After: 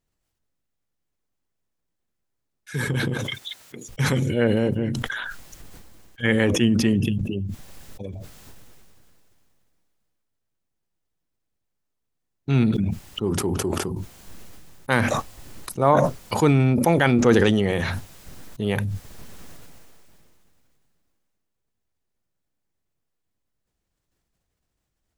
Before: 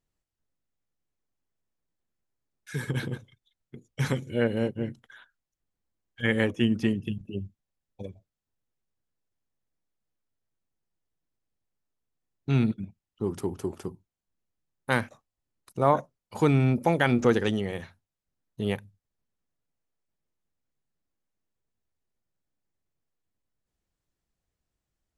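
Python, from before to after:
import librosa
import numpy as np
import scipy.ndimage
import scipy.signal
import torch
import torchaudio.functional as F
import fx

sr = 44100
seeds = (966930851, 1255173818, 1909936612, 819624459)

y = fx.highpass(x, sr, hz=fx.line((3.13, 330.0), (3.88, 1400.0)), slope=6, at=(3.13, 3.88), fade=0.02)
y = fx.sustainer(y, sr, db_per_s=20.0)
y = y * librosa.db_to_amplitude(3.5)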